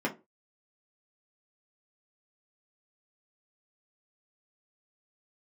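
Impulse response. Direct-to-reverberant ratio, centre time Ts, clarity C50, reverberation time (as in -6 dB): -3.0 dB, 14 ms, 15.0 dB, 0.25 s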